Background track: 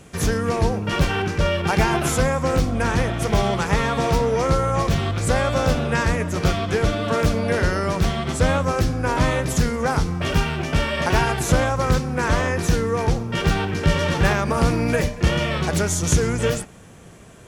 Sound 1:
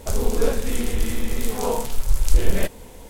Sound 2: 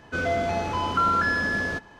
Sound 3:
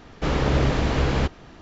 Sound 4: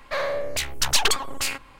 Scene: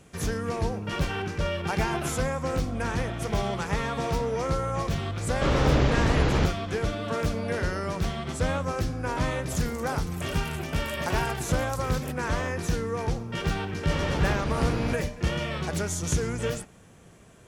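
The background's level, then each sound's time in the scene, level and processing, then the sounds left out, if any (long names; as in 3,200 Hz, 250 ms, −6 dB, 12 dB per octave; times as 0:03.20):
background track −8 dB
0:05.19: mix in 3 −1.5 dB
0:09.45: mix in 1 −9.5 dB + harmonic-percussive split with one part muted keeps percussive
0:13.67: mix in 3 −9 dB
not used: 2, 4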